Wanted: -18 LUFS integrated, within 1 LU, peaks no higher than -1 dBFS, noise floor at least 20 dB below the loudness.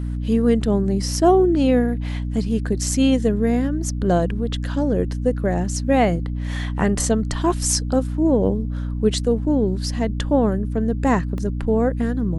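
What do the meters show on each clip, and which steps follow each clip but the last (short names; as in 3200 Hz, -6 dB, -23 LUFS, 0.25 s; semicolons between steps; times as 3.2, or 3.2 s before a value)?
dropouts 1; longest dropout 1.3 ms; hum 60 Hz; harmonics up to 300 Hz; hum level -23 dBFS; loudness -20.5 LUFS; peak -4.5 dBFS; loudness target -18.0 LUFS
-> interpolate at 11.38, 1.3 ms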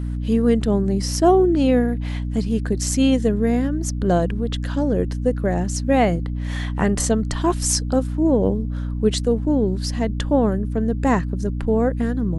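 dropouts 0; hum 60 Hz; harmonics up to 300 Hz; hum level -23 dBFS
-> notches 60/120/180/240/300 Hz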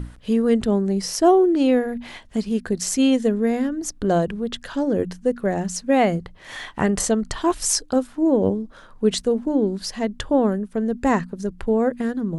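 hum none; loudness -21.5 LUFS; peak -5.0 dBFS; loudness target -18.0 LUFS
-> gain +3.5 dB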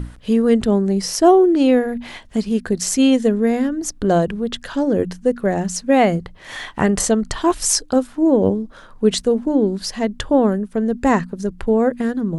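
loudness -18.0 LUFS; peak -1.5 dBFS; noise floor -43 dBFS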